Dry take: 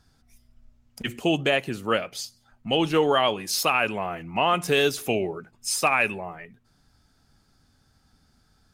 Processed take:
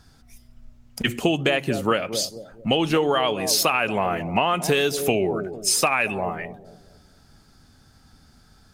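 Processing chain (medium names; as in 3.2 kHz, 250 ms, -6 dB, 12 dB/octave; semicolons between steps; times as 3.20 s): bucket-brigade echo 225 ms, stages 1024, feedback 37%, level -13 dB; compression 12:1, threshold -25 dBFS, peak gain reduction 10 dB; trim +8.5 dB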